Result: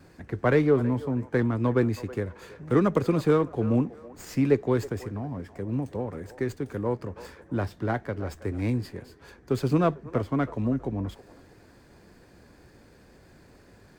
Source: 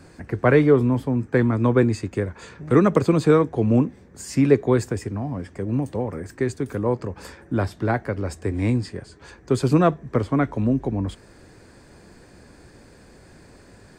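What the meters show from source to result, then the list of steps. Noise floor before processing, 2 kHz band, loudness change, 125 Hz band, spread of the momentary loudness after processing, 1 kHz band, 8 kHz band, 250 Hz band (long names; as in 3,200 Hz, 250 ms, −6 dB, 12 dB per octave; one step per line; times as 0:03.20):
−50 dBFS, −5.5 dB, −5.5 dB, −5.5 dB, 13 LU, −5.5 dB, −9.5 dB, −5.5 dB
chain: pitch vibrato 2 Hz 19 cents
delay with a band-pass on its return 324 ms, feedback 30%, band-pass 850 Hz, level −14.5 dB
windowed peak hold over 3 samples
level −5.5 dB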